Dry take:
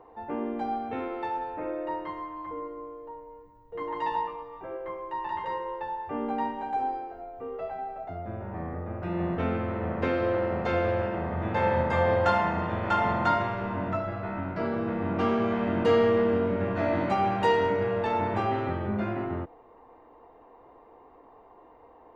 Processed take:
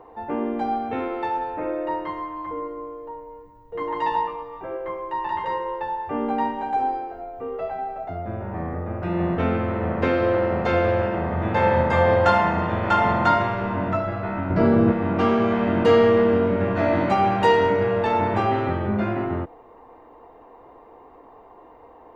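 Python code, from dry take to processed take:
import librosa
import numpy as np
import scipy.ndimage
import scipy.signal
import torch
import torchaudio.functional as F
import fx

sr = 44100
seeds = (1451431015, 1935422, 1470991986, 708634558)

y = fx.low_shelf(x, sr, hz=480.0, db=10.0, at=(14.5, 14.92))
y = y * 10.0 ** (6.0 / 20.0)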